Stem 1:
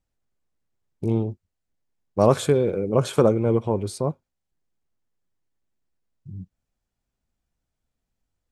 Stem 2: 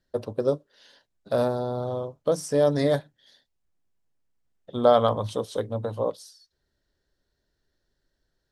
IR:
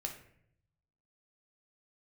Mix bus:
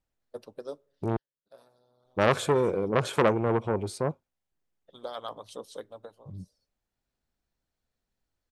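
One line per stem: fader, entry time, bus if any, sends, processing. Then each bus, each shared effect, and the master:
-1.0 dB, 0.00 s, muted 1.17–2.05, no send, tone controls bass -4 dB, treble -4 dB
-10.5 dB, 0.20 s, send -21.5 dB, harmonic-percussive split harmonic -16 dB; tilt +1.5 dB/oct; auto duck -18 dB, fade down 0.25 s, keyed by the first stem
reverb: on, RT60 0.65 s, pre-delay 8 ms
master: core saturation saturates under 1300 Hz

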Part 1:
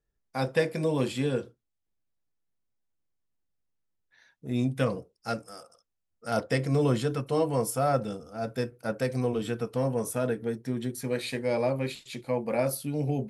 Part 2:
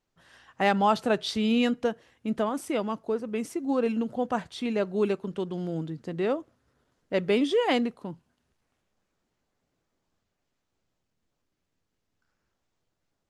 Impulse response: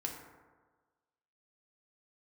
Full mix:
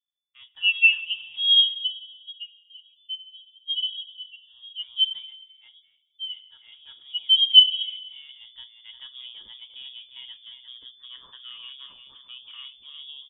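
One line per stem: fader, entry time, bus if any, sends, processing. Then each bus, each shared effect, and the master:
-17.0 dB, 0.00 s, send -23 dB, echo send -8.5 dB, auto duck -17 dB, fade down 1.05 s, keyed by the second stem
+2.5 dB, 0.00 s, send -8 dB, no echo send, level-crossing sampler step -30 dBFS; bell 630 Hz +3 dB 1.2 oct; spectral expander 4:1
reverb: on, RT60 1.4 s, pre-delay 3 ms
echo: echo 0.351 s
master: low shelf 230 Hz +5 dB; inverted band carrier 3500 Hz

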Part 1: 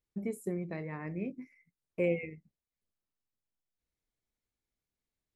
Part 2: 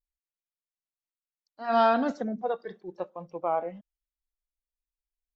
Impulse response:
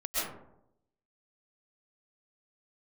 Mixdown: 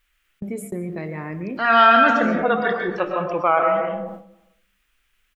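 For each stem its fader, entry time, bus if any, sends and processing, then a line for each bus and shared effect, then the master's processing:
-11.0 dB, 0.25 s, send -17.5 dB, dry
-0.5 dB, 0.00 s, send -10.5 dB, band shelf 2000 Hz +14 dB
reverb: on, RT60 0.80 s, pre-delay 90 ms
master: gate with hold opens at -41 dBFS; fast leveller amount 50%

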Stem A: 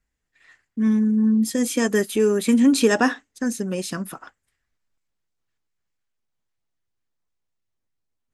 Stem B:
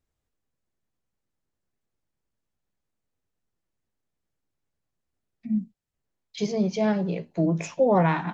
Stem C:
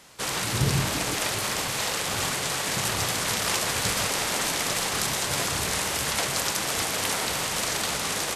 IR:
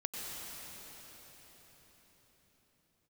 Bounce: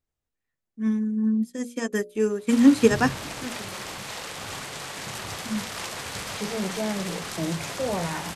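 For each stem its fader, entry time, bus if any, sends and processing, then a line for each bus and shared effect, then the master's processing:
+3.0 dB, 0.00 s, no send, upward expander 2.5:1, over -38 dBFS
-4.0 dB, 0.00 s, no send, limiter -16.5 dBFS, peak gain reduction 7.5 dB
-6.5 dB, 2.30 s, no send, high shelf 6400 Hz -6.5 dB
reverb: off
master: notches 60/120/180/240/300/360/420/480/540/600 Hz

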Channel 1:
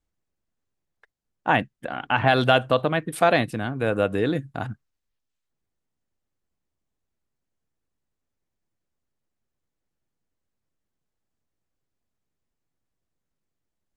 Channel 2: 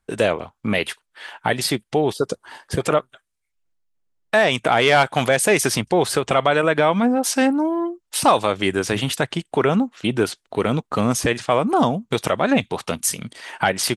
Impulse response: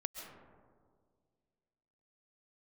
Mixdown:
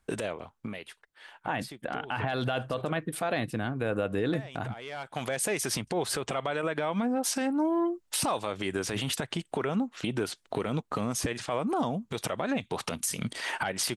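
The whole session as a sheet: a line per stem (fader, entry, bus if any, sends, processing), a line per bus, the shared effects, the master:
-3.0 dB, 0.00 s, no send, dry
+2.5 dB, 0.00 s, no send, compressor 16:1, threshold -26 dBFS, peak gain reduction 17 dB; auto duck -16 dB, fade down 1.00 s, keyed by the first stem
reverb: off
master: limiter -19 dBFS, peak gain reduction 11.5 dB

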